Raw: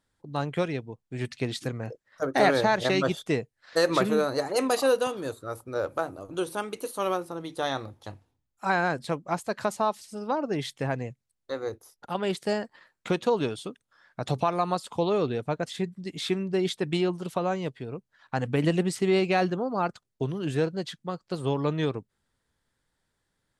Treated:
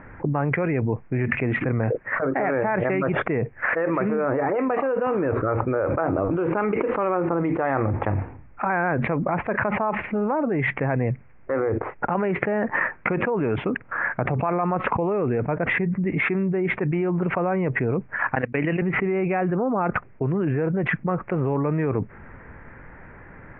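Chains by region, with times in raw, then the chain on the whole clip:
18.35–18.82 s: gate -27 dBFS, range -34 dB + frequency weighting D
whole clip: steep low-pass 2.4 kHz 72 dB/octave; level flattener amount 100%; trim -5 dB

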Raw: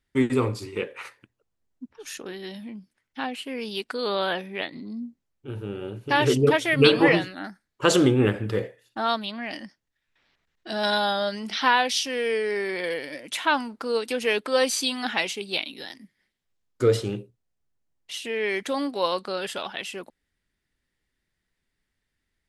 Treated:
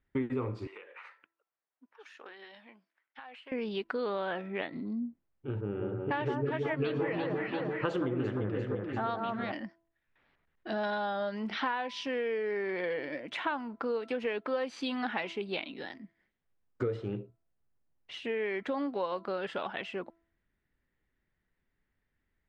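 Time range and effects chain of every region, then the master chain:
0.67–3.52 s: high-pass 830 Hz + compression 16:1, threshold -41 dBFS
5.61–9.52 s: level-controlled noise filter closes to 1.2 kHz, open at -17.5 dBFS + echo whose repeats swap between lows and highs 173 ms, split 1.5 kHz, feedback 66%, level -3.5 dB
whole clip: low-pass 2 kHz 12 dB/octave; de-hum 333.4 Hz, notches 4; compression 6:1, threshold -30 dBFS

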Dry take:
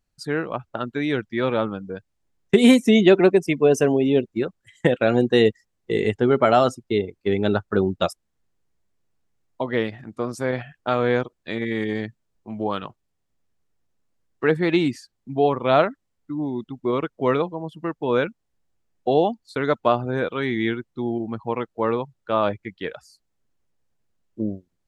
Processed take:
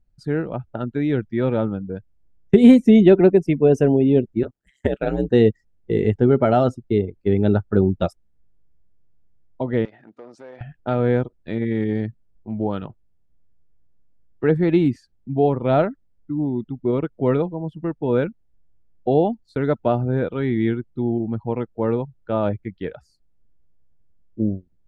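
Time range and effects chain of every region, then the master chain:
4.43–5.31 s: high-pass 320 Hz 6 dB/octave + treble shelf 6.7 kHz +8 dB + ring modulator 67 Hz
9.85–10.61 s: compression 8:1, threshold -30 dBFS + hard clipper -29 dBFS + band-pass 500–5100 Hz
whole clip: tilt EQ -3.5 dB/octave; band-stop 1.1 kHz, Q 6.3; trim -3 dB

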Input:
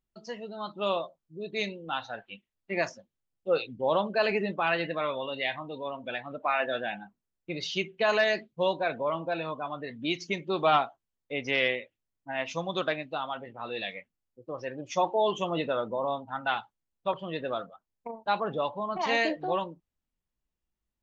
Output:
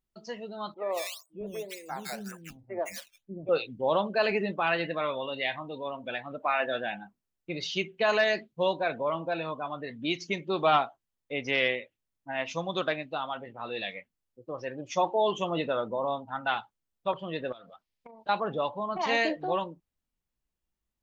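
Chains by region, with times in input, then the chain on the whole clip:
0.74–3.49 s: low-pass that closes with the level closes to 1 kHz, closed at -28 dBFS + decimation with a swept rate 10× 1.9 Hz + three bands offset in time mids, highs, lows 160/590 ms, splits 320/1600 Hz
17.52–18.29 s: high-order bell 3.2 kHz +8.5 dB + compression 20:1, threshold -44 dBFS
whole clip: none

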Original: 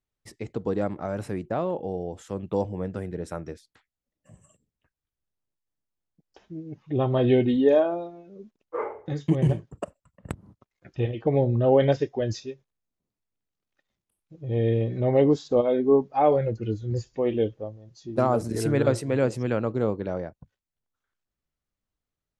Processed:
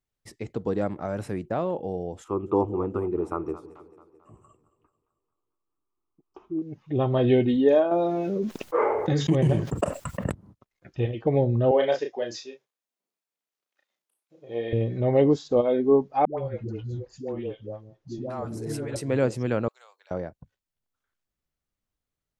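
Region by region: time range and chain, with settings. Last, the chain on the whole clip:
2.24–6.62 s: FFT filter 110 Hz 0 dB, 180 Hz -5 dB, 370 Hz +13 dB, 540 Hz -5 dB, 830 Hz +5 dB, 1.2 kHz +14 dB, 1.7 kHz -13 dB, 2.5 kHz -2 dB, 4.1 kHz -14 dB, 8.6 kHz -10 dB + two-band feedback delay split 430 Hz, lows 165 ms, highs 220 ms, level -15 dB
7.91–10.30 s: bass shelf 77 Hz -10 dB + level flattener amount 70%
11.71–14.73 s: high-pass 460 Hz + doubling 34 ms -5 dB
16.25–18.96 s: compression 4:1, threshold -29 dBFS + phase dispersion highs, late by 132 ms, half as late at 490 Hz + tape noise reduction on one side only decoder only
19.68–20.11 s: high-pass 700 Hz 24 dB/octave + differentiator
whole clip: none

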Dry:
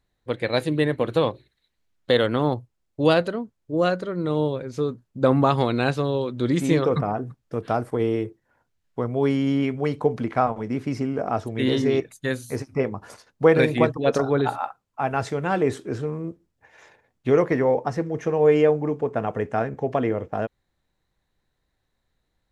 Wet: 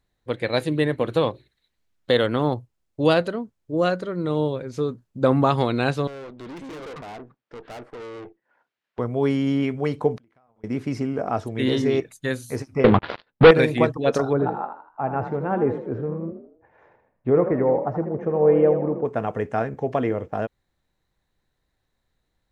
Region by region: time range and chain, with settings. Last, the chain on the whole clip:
6.07–8.99 s: band-pass 290–2900 Hz + valve stage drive 35 dB, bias 0.7 + tape noise reduction on one side only encoder only
10.17–10.64 s: compression 16:1, threshold -26 dBFS + inverted gate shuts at -33 dBFS, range -29 dB
12.84–13.51 s: peaking EQ 62 Hz -13 dB 0.55 oct + waveshaping leveller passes 5 + steep low-pass 4.1 kHz 48 dB/octave
14.33–19.05 s: low-pass 1.1 kHz + frequency-shifting echo 80 ms, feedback 41%, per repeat +37 Hz, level -9 dB
whole clip: none

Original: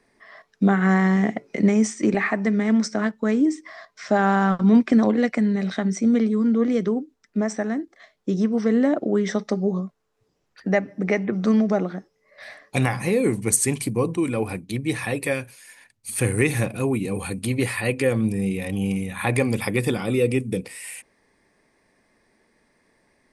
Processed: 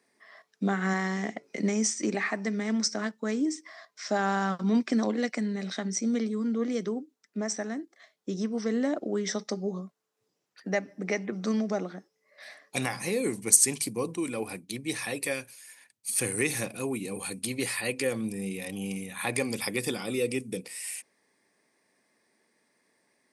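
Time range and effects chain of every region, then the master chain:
0.93–1.43 s: low-pass 9.3 kHz 24 dB/octave + bass shelf 170 Hz -6.5 dB
whole clip: dynamic bell 5.3 kHz, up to +7 dB, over -49 dBFS, Q 1.5; high-pass 180 Hz; treble shelf 4 kHz +8.5 dB; trim -8 dB

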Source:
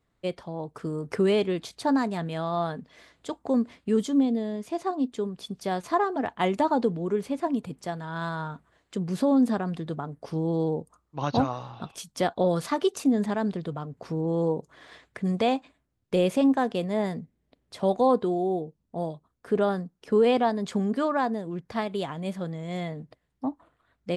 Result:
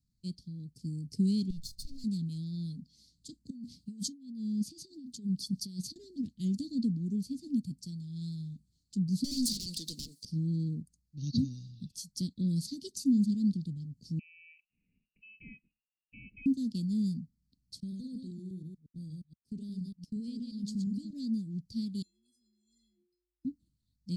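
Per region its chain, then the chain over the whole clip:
1.50–2.04 s: comb filter that takes the minimum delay 1.4 ms + bass shelf 130 Hz +10.5 dB + compression, threshold -31 dBFS
3.50–5.96 s: band-stop 7.1 kHz, Q 23 + compressor with a negative ratio -34 dBFS + high-pass 65 Hz
9.24–10.25 s: high-pass 750 Hz + overdrive pedal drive 34 dB, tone 7.9 kHz, clips at -16 dBFS
14.19–16.46 s: distance through air 270 m + comb 3.9 ms, depth 37% + frequency inversion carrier 2.8 kHz
17.80–21.13 s: chunks repeated in reverse 118 ms, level -4.5 dB + expander -37 dBFS + compression 2.5:1, threshold -31 dBFS
22.02–23.45 s: inharmonic resonator 300 Hz, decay 0.83 s, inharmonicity 0.03 + frequency shift +51 Hz
whole clip: dynamic bell 260 Hz, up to +6 dB, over -35 dBFS, Q 1.4; elliptic band-stop 210–5100 Hz, stop band 70 dB; peaking EQ 4.4 kHz +10.5 dB 0.3 oct; trim -2.5 dB

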